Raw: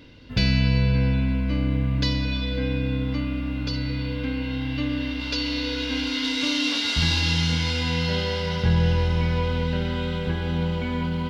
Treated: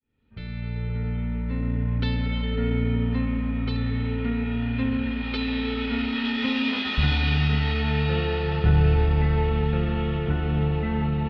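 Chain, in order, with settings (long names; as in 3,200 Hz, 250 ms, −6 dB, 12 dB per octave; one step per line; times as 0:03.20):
fade in at the beginning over 2.78 s
pitch shifter −2 semitones
high-frequency loss of the air 310 metres
level +2 dB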